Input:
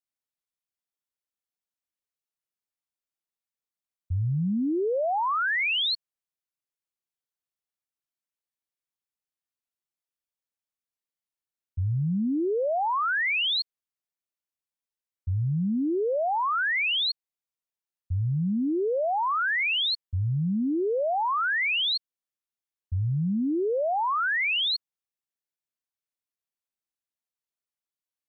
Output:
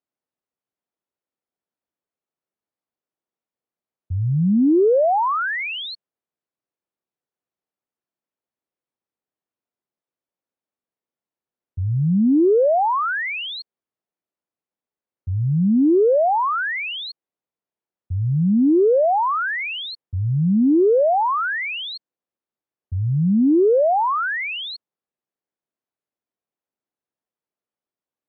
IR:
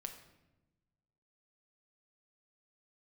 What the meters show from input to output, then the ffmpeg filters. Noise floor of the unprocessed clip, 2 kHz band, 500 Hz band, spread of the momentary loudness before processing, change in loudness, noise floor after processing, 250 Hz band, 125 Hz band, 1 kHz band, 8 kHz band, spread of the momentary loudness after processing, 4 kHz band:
below −85 dBFS, +1.0 dB, +10.5 dB, 7 LU, +6.5 dB, below −85 dBFS, +10.0 dB, +6.0 dB, +6.5 dB, can't be measured, 14 LU, −4.5 dB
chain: -af "bandpass=frequency=360:width_type=q:width=0.62:csg=0,acontrast=86,volume=4dB"

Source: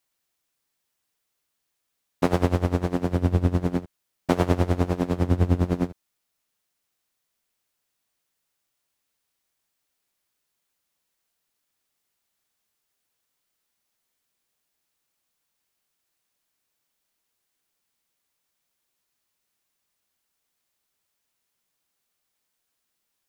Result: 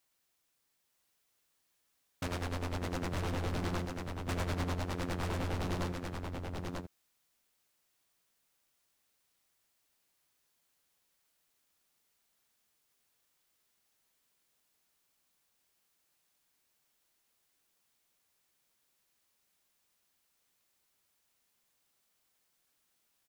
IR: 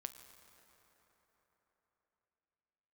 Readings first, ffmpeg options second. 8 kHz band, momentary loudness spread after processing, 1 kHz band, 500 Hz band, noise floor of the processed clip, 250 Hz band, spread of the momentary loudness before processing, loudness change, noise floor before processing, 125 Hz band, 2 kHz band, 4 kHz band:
−2.0 dB, 6 LU, −8.5 dB, −13.0 dB, −78 dBFS, −14.0 dB, 6 LU, −13.0 dB, −79 dBFS, −12.5 dB, −4.0 dB, −2.0 dB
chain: -filter_complex "[0:a]alimiter=limit=-14.5dB:level=0:latency=1:release=214,aeval=exprs='0.0316*(abs(mod(val(0)/0.0316+3,4)-2)-1)':channel_layout=same,asplit=2[link_01][link_02];[link_02]aecho=0:1:942:0.631[link_03];[link_01][link_03]amix=inputs=2:normalize=0"

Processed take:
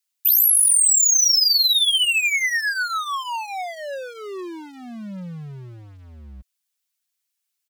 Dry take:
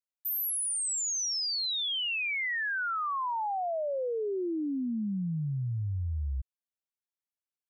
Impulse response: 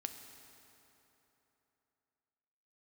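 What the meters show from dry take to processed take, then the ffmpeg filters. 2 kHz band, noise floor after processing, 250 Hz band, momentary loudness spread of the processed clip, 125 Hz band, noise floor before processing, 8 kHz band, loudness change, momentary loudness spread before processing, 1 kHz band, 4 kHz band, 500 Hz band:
+10.0 dB, −79 dBFS, −3.0 dB, 21 LU, −5.5 dB, below −85 dBFS, +15.5 dB, +15.0 dB, 5 LU, +4.0 dB, +13.5 dB, −1.0 dB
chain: -af "volume=31.5dB,asoftclip=hard,volume=-31.5dB,tiltshelf=frequency=1300:gain=-10,aecho=1:1:5.4:0.56,volume=6.5dB"

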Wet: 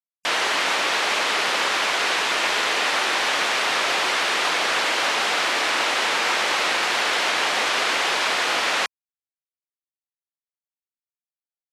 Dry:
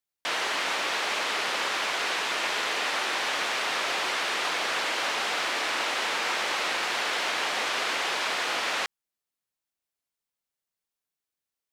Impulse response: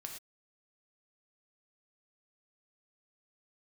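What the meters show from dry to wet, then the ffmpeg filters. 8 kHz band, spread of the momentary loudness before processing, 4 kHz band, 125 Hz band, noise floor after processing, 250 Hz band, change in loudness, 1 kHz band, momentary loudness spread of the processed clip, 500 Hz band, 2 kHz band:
+6.5 dB, 0 LU, +6.5 dB, can't be measured, below −85 dBFS, +6.5 dB, +6.5 dB, +6.5 dB, 0 LU, +6.5 dB, +6.5 dB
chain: -af "afftfilt=real='re*gte(hypot(re,im),0.002)':imag='im*gte(hypot(re,im),0.002)':win_size=1024:overlap=0.75,volume=6.5dB"

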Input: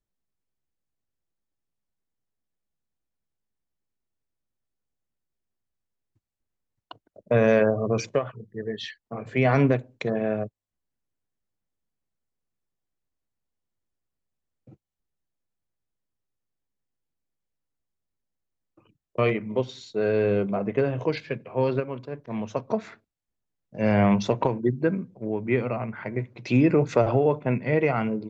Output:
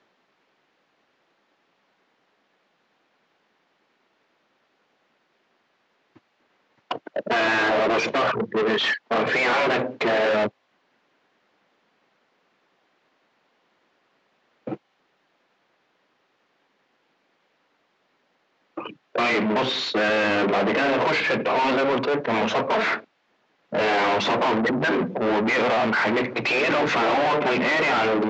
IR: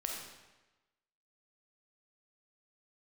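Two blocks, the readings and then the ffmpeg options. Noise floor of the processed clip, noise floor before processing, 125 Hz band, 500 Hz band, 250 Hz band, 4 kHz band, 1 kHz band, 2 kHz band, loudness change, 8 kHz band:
−69 dBFS, −85 dBFS, −9.5 dB, +2.0 dB, 0.0 dB, +15.0 dB, +9.5 dB, +11.5 dB, +3.0 dB, can't be measured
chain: -filter_complex "[0:a]afftfilt=real='re*lt(hypot(re,im),0.355)':imag='im*lt(hypot(re,im),0.355)':win_size=1024:overlap=0.75,asplit=2[link_01][link_02];[link_02]highpass=frequency=720:poles=1,volume=34dB,asoftclip=type=tanh:threshold=-12.5dB[link_03];[link_01][link_03]amix=inputs=2:normalize=0,lowpass=frequency=2300:poles=1,volume=-6dB,aresample=16000,asoftclip=type=tanh:threshold=-25dB,aresample=44100,acrossover=split=160 4600:gain=0.112 1 0.0891[link_04][link_05][link_06];[link_04][link_05][link_06]amix=inputs=3:normalize=0,volume=6dB"

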